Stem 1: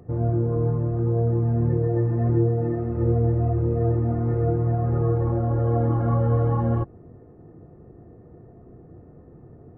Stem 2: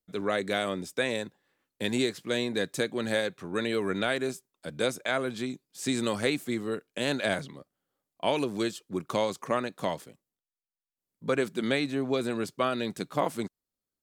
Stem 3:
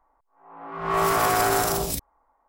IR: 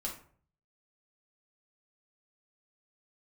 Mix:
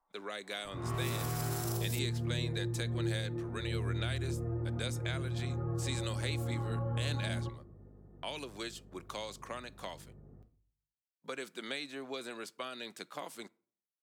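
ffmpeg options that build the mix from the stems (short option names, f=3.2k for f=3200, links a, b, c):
-filter_complex "[0:a]bandreject=f=700:w=12,aeval=exprs='val(0)+0.01*(sin(2*PI*50*n/s)+sin(2*PI*2*50*n/s)/2+sin(2*PI*3*50*n/s)/3+sin(2*PI*4*50*n/s)/4+sin(2*PI*5*50*n/s)/5)':c=same,adelay=650,volume=-14dB,asplit=2[a][b];[b]volume=-4dB[c];[1:a]agate=range=-24dB:threshold=-46dB:ratio=16:detection=peak,highpass=f=1k:p=1,highshelf=f=4.1k:g=-4.5,volume=-2.5dB,asplit=2[d][e];[e]volume=-21.5dB[f];[2:a]volume=-13.5dB[g];[3:a]atrim=start_sample=2205[h];[c][f]amix=inputs=2:normalize=0[i];[i][h]afir=irnorm=-1:irlink=0[j];[a][d][g][j]amix=inputs=4:normalize=0,lowshelf=f=230:g=-4.5,acrossover=split=330|3000[k][l][m];[l]acompressor=threshold=-41dB:ratio=6[n];[k][n][m]amix=inputs=3:normalize=0"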